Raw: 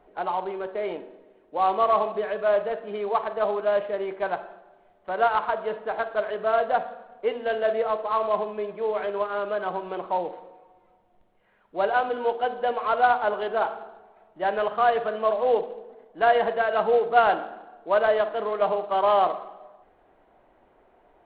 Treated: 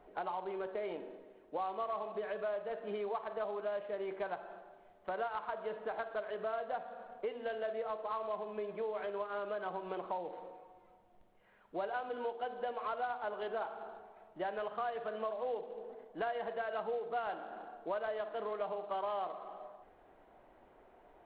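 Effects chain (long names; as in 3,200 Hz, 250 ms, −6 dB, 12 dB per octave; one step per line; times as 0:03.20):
downward compressor 5 to 1, threshold −34 dBFS, peak gain reduction 18.5 dB
level −2.5 dB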